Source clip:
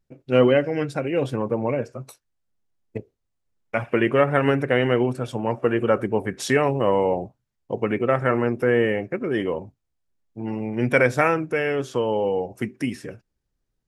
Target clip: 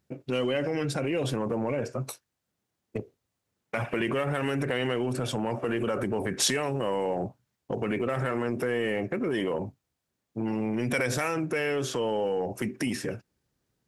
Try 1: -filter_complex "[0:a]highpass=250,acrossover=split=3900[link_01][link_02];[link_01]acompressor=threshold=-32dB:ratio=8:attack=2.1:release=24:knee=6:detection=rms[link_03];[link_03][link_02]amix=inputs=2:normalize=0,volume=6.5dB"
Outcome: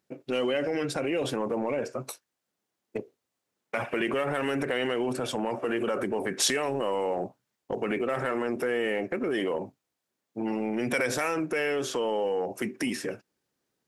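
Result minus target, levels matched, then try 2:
125 Hz band −8.0 dB
-filter_complex "[0:a]highpass=96,acrossover=split=3900[link_01][link_02];[link_01]acompressor=threshold=-32dB:ratio=8:attack=2.1:release=24:knee=6:detection=rms[link_03];[link_03][link_02]amix=inputs=2:normalize=0,volume=6.5dB"

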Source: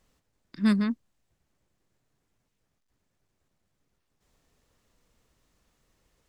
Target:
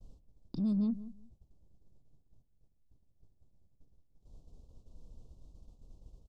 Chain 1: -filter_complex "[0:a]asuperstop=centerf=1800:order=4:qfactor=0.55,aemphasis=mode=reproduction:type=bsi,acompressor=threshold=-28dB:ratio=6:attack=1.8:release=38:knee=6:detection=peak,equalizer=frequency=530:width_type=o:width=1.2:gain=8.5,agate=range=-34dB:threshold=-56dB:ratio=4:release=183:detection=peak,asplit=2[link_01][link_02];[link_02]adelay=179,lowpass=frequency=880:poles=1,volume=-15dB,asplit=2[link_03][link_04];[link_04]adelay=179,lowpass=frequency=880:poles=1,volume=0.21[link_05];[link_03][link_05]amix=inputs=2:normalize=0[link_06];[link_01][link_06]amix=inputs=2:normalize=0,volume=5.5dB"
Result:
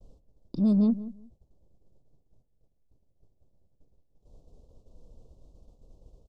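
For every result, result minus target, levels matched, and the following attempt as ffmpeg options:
downward compressor: peak gain reduction −7 dB; 500 Hz band +5.0 dB
-filter_complex "[0:a]asuperstop=centerf=1800:order=4:qfactor=0.55,aemphasis=mode=reproduction:type=bsi,acompressor=threshold=-36.5dB:ratio=6:attack=1.8:release=38:knee=6:detection=peak,equalizer=frequency=530:width_type=o:width=1.2:gain=8.5,agate=range=-34dB:threshold=-56dB:ratio=4:release=183:detection=peak,asplit=2[link_01][link_02];[link_02]adelay=179,lowpass=frequency=880:poles=1,volume=-15dB,asplit=2[link_03][link_04];[link_04]adelay=179,lowpass=frequency=880:poles=1,volume=0.21[link_05];[link_03][link_05]amix=inputs=2:normalize=0[link_06];[link_01][link_06]amix=inputs=2:normalize=0,volume=5.5dB"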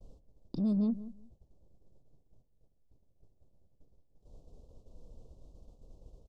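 500 Hz band +5.0 dB
-filter_complex "[0:a]asuperstop=centerf=1800:order=4:qfactor=0.55,aemphasis=mode=reproduction:type=bsi,acompressor=threshold=-36.5dB:ratio=6:attack=1.8:release=38:knee=6:detection=peak,agate=range=-34dB:threshold=-56dB:ratio=4:release=183:detection=peak,asplit=2[link_01][link_02];[link_02]adelay=179,lowpass=frequency=880:poles=1,volume=-15dB,asplit=2[link_03][link_04];[link_04]adelay=179,lowpass=frequency=880:poles=1,volume=0.21[link_05];[link_03][link_05]amix=inputs=2:normalize=0[link_06];[link_01][link_06]amix=inputs=2:normalize=0,volume=5.5dB"

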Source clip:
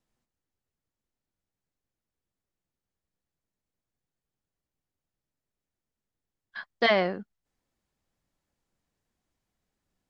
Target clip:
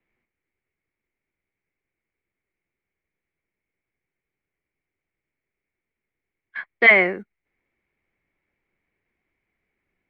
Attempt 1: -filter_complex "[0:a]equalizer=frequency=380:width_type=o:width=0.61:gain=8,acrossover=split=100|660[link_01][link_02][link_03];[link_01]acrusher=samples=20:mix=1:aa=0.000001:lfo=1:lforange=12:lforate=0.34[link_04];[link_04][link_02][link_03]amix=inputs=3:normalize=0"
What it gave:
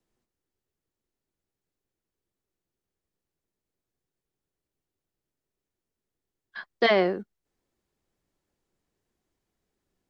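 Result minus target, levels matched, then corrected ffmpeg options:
2,000 Hz band −6.0 dB
-filter_complex "[0:a]lowpass=frequency=2200:width_type=q:width=9.1,equalizer=frequency=380:width_type=o:width=0.61:gain=8,acrossover=split=100|660[link_01][link_02][link_03];[link_01]acrusher=samples=20:mix=1:aa=0.000001:lfo=1:lforange=12:lforate=0.34[link_04];[link_04][link_02][link_03]amix=inputs=3:normalize=0"

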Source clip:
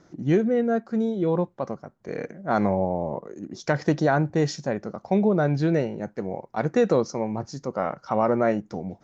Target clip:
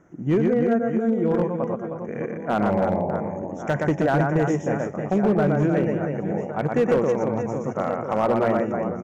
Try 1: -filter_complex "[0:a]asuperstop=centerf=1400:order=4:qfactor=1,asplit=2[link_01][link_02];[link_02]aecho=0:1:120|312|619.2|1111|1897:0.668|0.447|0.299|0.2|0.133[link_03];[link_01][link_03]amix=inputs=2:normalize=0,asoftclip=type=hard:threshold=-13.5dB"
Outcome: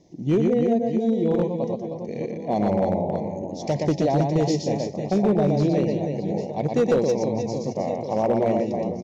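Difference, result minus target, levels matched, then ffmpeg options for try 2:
4,000 Hz band +6.5 dB
-filter_complex "[0:a]asuperstop=centerf=4400:order=4:qfactor=1,asplit=2[link_01][link_02];[link_02]aecho=0:1:120|312|619.2|1111|1897:0.668|0.447|0.299|0.2|0.133[link_03];[link_01][link_03]amix=inputs=2:normalize=0,asoftclip=type=hard:threshold=-13.5dB"

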